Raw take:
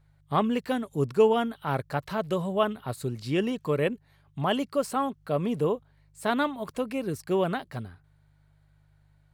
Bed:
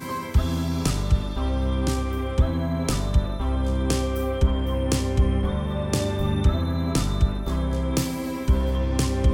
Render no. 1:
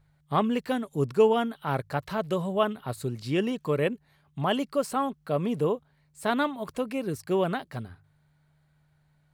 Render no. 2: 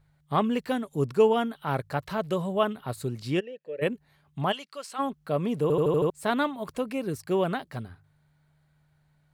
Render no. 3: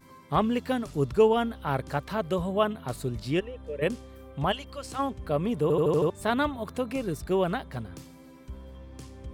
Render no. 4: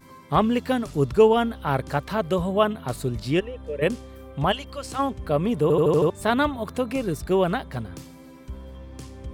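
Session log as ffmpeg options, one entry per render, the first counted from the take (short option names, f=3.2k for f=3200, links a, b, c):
-af "bandreject=f=50:t=h:w=4,bandreject=f=100:t=h:w=4"
-filter_complex "[0:a]asplit=3[a][b][c];[a]afade=t=out:st=3.39:d=0.02[d];[b]asplit=3[e][f][g];[e]bandpass=f=530:t=q:w=8,volume=0dB[h];[f]bandpass=f=1.84k:t=q:w=8,volume=-6dB[i];[g]bandpass=f=2.48k:t=q:w=8,volume=-9dB[j];[h][i][j]amix=inputs=3:normalize=0,afade=t=in:st=3.39:d=0.02,afade=t=out:st=3.81:d=0.02[k];[c]afade=t=in:st=3.81:d=0.02[l];[d][k][l]amix=inputs=3:normalize=0,asplit=3[m][n][o];[m]afade=t=out:st=4.51:d=0.02[p];[n]bandpass=f=3.7k:t=q:w=0.69,afade=t=in:st=4.51:d=0.02,afade=t=out:st=4.98:d=0.02[q];[o]afade=t=in:st=4.98:d=0.02[r];[p][q][r]amix=inputs=3:normalize=0,asplit=7[s][t][u][v][w][x][y];[s]atrim=end=5.702[z];[t]atrim=start=5.618:end=5.702[aa];[u]atrim=start=5.618:end=5.702[ab];[v]atrim=start=5.618:end=5.702[ac];[w]atrim=start=5.618:end=5.702[ad];[x]atrim=start=5.618:end=5.702[ae];[y]atrim=start=6.098[af];[z][aa]acrossfade=d=0.004:c1=hsin:c2=hsin[ag];[ag][ab]acrossfade=d=0.004:c1=hsin:c2=hsin[ah];[ah][ac]acrossfade=d=0.004:c1=hsin:c2=hsin[ai];[ai][ad]acrossfade=d=0.004:c1=hsin:c2=hsin[aj];[aj][ae]acrossfade=d=0.004:c1=hsin:c2=hsin[ak];[ak][af]acrossfade=d=0.004:c1=hsin:c2=hsin"
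-filter_complex "[1:a]volume=-21.5dB[a];[0:a][a]amix=inputs=2:normalize=0"
-af "volume=4.5dB"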